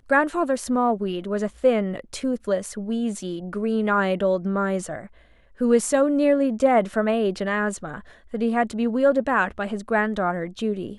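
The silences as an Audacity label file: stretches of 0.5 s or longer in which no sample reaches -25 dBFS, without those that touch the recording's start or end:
4.980000	5.610000	silence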